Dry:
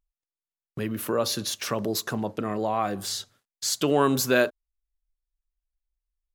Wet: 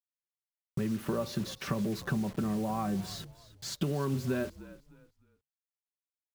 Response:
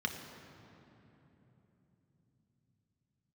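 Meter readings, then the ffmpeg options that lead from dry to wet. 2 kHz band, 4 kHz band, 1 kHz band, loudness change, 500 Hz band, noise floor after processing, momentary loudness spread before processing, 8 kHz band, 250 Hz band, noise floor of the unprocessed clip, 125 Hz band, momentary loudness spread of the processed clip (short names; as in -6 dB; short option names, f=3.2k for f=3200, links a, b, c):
-12.0 dB, -12.0 dB, -10.0 dB, -7.5 dB, -10.5 dB, under -85 dBFS, 11 LU, -14.5 dB, -3.0 dB, under -85 dBFS, +0.5 dB, 11 LU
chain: -filter_complex "[0:a]lowpass=f=1.2k:p=1,aecho=1:1:5.2:0.47,asubboost=boost=6:cutoff=220,acompressor=threshold=-28dB:ratio=12,acrusher=bits=7:mix=0:aa=0.000001,asplit=2[a][b];[b]asplit=3[c][d][e];[c]adelay=304,afreqshift=-49,volume=-17.5dB[f];[d]adelay=608,afreqshift=-98,volume=-27.4dB[g];[e]adelay=912,afreqshift=-147,volume=-37.3dB[h];[f][g][h]amix=inputs=3:normalize=0[i];[a][i]amix=inputs=2:normalize=0"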